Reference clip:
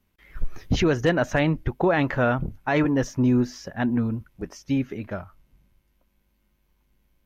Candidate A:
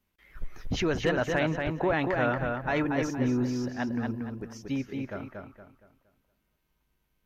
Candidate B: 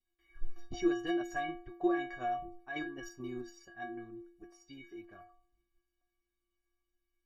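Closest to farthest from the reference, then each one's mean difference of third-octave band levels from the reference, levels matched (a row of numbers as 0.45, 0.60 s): A, B; 5.5, 7.5 dB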